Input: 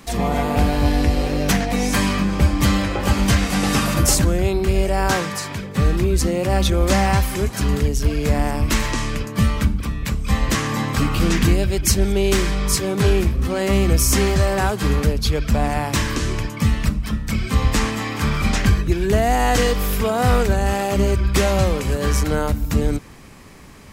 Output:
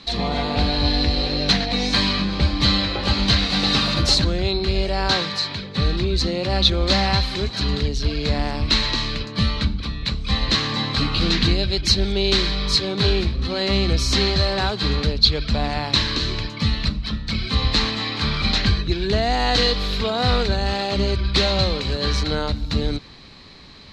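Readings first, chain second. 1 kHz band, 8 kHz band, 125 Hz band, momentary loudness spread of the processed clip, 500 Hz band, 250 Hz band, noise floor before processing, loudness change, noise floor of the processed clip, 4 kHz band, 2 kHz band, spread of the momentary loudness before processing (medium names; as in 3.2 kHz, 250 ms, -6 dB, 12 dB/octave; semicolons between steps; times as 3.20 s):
-3.0 dB, -9.5 dB, -3.5 dB, 6 LU, -3.5 dB, -3.5 dB, -31 dBFS, -1.0 dB, -34 dBFS, +9.0 dB, -1.0 dB, 5 LU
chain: resonant low-pass 4.1 kHz, resonance Q 10; trim -3.5 dB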